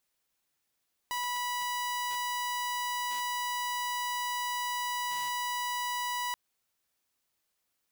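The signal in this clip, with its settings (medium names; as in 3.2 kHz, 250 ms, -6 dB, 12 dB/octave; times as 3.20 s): tone saw 980 Hz -28.5 dBFS 5.23 s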